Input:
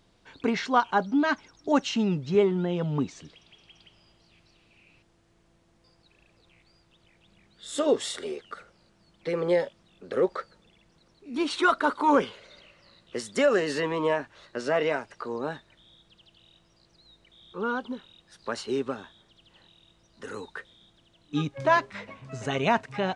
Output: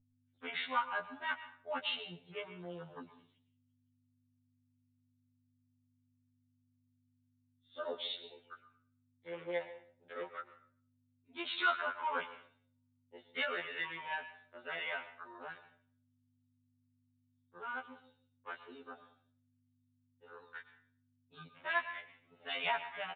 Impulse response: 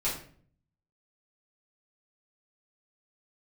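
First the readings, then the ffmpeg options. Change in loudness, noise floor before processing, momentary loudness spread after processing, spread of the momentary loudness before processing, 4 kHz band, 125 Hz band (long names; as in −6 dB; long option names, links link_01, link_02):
−12.0 dB, −64 dBFS, 20 LU, 17 LU, −5.5 dB, −25.0 dB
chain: -filter_complex "[0:a]afwtdn=0.0126,agate=range=-33dB:threshold=-51dB:ratio=3:detection=peak,aderivative,aeval=exprs='val(0)+0.0002*(sin(2*PI*50*n/s)+sin(2*PI*2*50*n/s)/2+sin(2*PI*3*50*n/s)/3+sin(2*PI*4*50*n/s)/4+sin(2*PI*5*50*n/s)/5)':channel_layout=same,asplit=2[link_01][link_02];[link_02]adelay=13,volume=-13dB[link_03];[link_01][link_03]amix=inputs=2:normalize=0,asplit=2[link_04][link_05];[1:a]atrim=start_sample=2205,lowshelf=frequency=320:gain=-11.5,adelay=108[link_06];[link_05][link_06]afir=irnorm=-1:irlink=0,volume=-17.5dB[link_07];[link_04][link_07]amix=inputs=2:normalize=0,aresample=8000,aresample=44100,afftfilt=real='re*2*eq(mod(b,4),0)':imag='im*2*eq(mod(b,4),0)':win_size=2048:overlap=0.75,volume=7.5dB"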